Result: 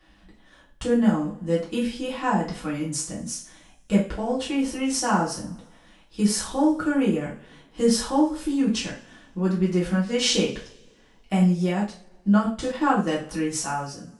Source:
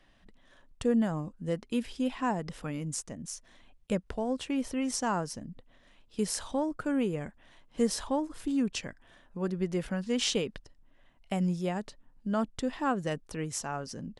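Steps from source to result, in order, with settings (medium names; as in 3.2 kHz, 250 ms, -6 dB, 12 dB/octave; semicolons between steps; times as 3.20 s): fade out at the end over 0.50 s; two-slope reverb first 0.38 s, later 1.7 s, from -25 dB, DRR -7 dB; 11.36–13.08 s: transient shaper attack +2 dB, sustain -3 dB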